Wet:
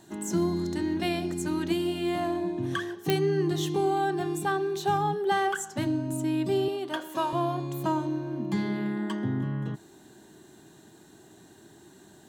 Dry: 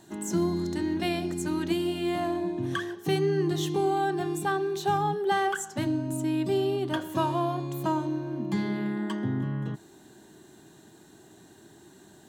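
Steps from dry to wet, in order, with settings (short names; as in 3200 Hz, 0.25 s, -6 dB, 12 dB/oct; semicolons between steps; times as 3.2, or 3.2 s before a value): 6.68–7.33 Bessel high-pass 420 Hz, order 2; pops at 3.1, -10 dBFS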